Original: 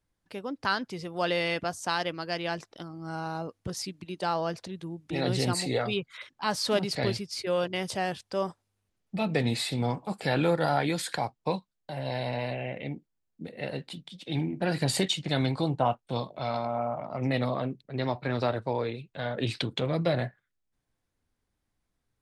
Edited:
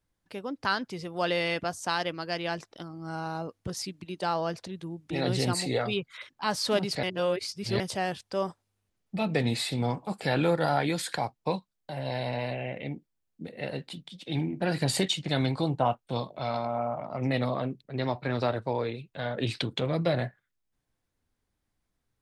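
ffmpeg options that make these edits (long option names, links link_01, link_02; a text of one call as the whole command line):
ffmpeg -i in.wav -filter_complex "[0:a]asplit=3[link_01][link_02][link_03];[link_01]atrim=end=7.032[link_04];[link_02]atrim=start=7.028:end=7.802,asetpts=PTS-STARTPTS,areverse[link_05];[link_03]atrim=start=7.798[link_06];[link_04][link_05]acrossfade=duration=0.004:curve1=hsin:curve2=hsin[link_07];[link_07][link_06]acrossfade=duration=0.004:curve1=hsin:curve2=hsin" out.wav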